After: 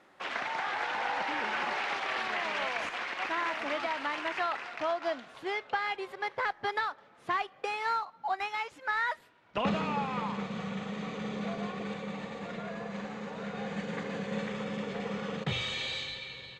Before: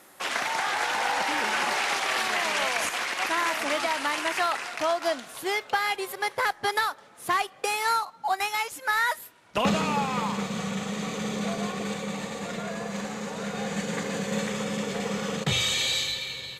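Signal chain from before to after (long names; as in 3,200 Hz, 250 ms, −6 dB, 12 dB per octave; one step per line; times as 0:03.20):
low-pass filter 3,200 Hz 12 dB per octave
level −5.5 dB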